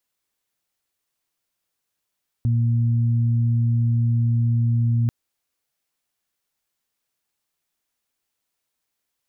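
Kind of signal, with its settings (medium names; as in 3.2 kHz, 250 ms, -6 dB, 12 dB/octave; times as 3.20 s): steady additive tone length 2.64 s, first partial 117 Hz, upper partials -12 dB, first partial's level -16.5 dB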